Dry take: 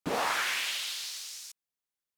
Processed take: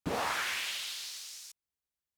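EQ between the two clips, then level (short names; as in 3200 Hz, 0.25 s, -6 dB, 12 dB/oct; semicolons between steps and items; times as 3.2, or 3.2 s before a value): bell 66 Hz +14 dB 1.8 oct; -3.5 dB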